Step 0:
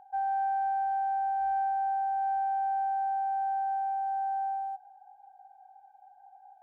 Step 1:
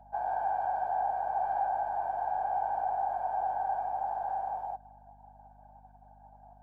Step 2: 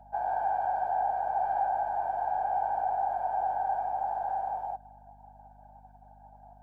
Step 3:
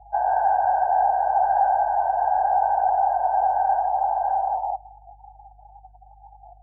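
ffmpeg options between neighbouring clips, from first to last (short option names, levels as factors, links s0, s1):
-af "afftfilt=real='hypot(re,im)*cos(2*PI*random(0))':imag='hypot(re,im)*sin(2*PI*random(1))':win_size=512:overlap=0.75,aeval=exprs='val(0)+0.000794*(sin(2*PI*50*n/s)+sin(2*PI*2*50*n/s)/2+sin(2*PI*3*50*n/s)/3+sin(2*PI*4*50*n/s)/4+sin(2*PI*5*50*n/s)/5)':c=same,volume=1.58"
-af "bandreject=f=1100:w=8.2,volume=1.26"
-af "afftdn=nr=30:nf=-43,volume=2.82"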